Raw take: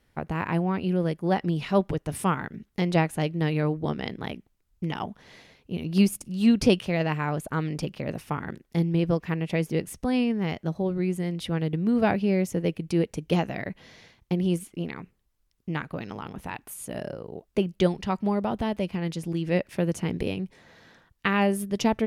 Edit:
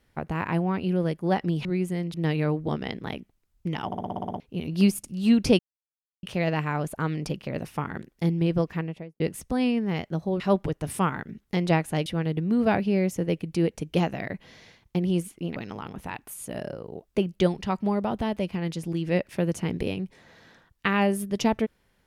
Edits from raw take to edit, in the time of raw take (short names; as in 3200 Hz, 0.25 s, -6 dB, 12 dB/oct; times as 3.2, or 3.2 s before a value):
1.65–3.31 swap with 10.93–11.42
5.03 stutter in place 0.06 s, 9 plays
6.76 insert silence 0.64 s
9.2–9.73 studio fade out
14.92–15.96 cut